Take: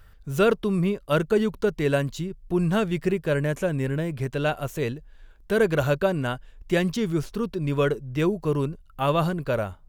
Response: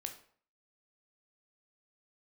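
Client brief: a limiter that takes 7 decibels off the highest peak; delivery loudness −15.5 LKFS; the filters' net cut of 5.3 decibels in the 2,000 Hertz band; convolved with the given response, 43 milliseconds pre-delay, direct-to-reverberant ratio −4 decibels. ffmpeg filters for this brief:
-filter_complex "[0:a]equalizer=frequency=2000:width_type=o:gain=-8,alimiter=limit=-17dB:level=0:latency=1,asplit=2[link_01][link_02];[1:a]atrim=start_sample=2205,adelay=43[link_03];[link_02][link_03]afir=irnorm=-1:irlink=0,volume=6dB[link_04];[link_01][link_04]amix=inputs=2:normalize=0,volume=7dB"

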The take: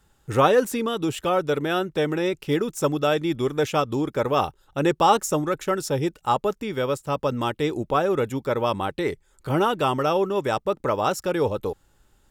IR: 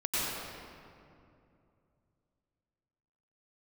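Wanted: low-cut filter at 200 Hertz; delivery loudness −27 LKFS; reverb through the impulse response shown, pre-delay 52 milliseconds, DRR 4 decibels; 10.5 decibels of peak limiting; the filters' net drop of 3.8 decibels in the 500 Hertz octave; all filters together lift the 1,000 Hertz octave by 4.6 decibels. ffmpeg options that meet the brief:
-filter_complex "[0:a]highpass=200,equalizer=frequency=500:width_type=o:gain=-6.5,equalizer=frequency=1000:width_type=o:gain=8,alimiter=limit=-13dB:level=0:latency=1,asplit=2[link_01][link_02];[1:a]atrim=start_sample=2205,adelay=52[link_03];[link_02][link_03]afir=irnorm=-1:irlink=0,volume=-13dB[link_04];[link_01][link_04]amix=inputs=2:normalize=0,volume=-2.5dB"

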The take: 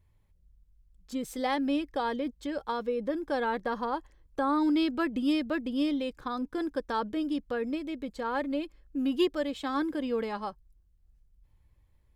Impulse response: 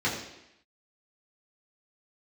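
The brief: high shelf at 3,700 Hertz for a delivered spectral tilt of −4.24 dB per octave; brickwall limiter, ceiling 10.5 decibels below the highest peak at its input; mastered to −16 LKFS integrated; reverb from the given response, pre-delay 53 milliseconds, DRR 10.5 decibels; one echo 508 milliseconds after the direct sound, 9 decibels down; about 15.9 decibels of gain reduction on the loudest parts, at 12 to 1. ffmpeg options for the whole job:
-filter_complex "[0:a]highshelf=frequency=3700:gain=3.5,acompressor=threshold=-38dB:ratio=12,alimiter=level_in=14.5dB:limit=-24dB:level=0:latency=1,volume=-14.5dB,aecho=1:1:508:0.355,asplit=2[link_01][link_02];[1:a]atrim=start_sample=2205,adelay=53[link_03];[link_02][link_03]afir=irnorm=-1:irlink=0,volume=-22dB[link_04];[link_01][link_04]amix=inputs=2:normalize=0,volume=29.5dB"

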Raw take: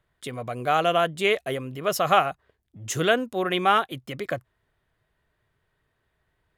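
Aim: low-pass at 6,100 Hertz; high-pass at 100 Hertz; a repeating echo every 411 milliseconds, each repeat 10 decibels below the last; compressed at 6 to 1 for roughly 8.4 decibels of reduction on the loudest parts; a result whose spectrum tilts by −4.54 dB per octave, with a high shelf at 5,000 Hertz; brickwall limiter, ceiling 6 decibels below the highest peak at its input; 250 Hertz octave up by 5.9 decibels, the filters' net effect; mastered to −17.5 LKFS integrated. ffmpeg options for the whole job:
ffmpeg -i in.wav -af "highpass=100,lowpass=6100,equalizer=frequency=250:width_type=o:gain=8.5,highshelf=frequency=5000:gain=7,acompressor=threshold=-22dB:ratio=6,alimiter=limit=-18dB:level=0:latency=1,aecho=1:1:411|822|1233|1644:0.316|0.101|0.0324|0.0104,volume=12.5dB" out.wav

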